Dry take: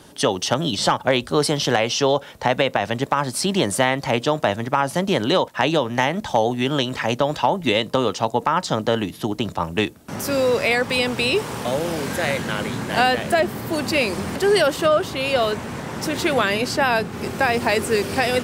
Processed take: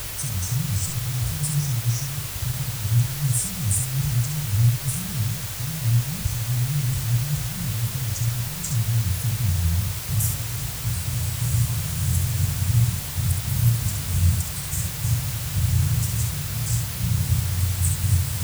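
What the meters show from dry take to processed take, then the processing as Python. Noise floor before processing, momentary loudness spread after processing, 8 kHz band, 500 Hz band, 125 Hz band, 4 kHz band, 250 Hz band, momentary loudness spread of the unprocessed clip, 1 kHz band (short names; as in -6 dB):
-40 dBFS, 5 LU, +4.5 dB, -26.5 dB, +9.5 dB, -9.0 dB, -9.0 dB, 5 LU, -20.0 dB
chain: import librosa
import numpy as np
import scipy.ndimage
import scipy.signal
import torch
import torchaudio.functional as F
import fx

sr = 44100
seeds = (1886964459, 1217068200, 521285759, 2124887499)

p1 = fx.over_compress(x, sr, threshold_db=-28.0, ratio=-1.0)
p2 = x + (p1 * librosa.db_to_amplitude(2.0))
p3 = scipy.signal.sosfilt(scipy.signal.ellip(3, 1.0, 40, [150.0, 7200.0], 'bandstop', fs=sr, output='sos'), p2)
p4 = fx.comb_fb(p3, sr, f0_hz=520.0, decay_s=0.43, harmonics='all', damping=0.0, mix_pct=60)
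p5 = fx.add_hum(p4, sr, base_hz=50, snr_db=15)
p6 = fx.low_shelf_res(p5, sr, hz=140.0, db=9.5, q=1.5)
p7 = fx.room_early_taps(p6, sr, ms=(34, 68), db=(-10.5, -5.5))
p8 = fx.quant_dither(p7, sr, seeds[0], bits=6, dither='triangular')
y = p8 * librosa.db_to_amplitude(3.0)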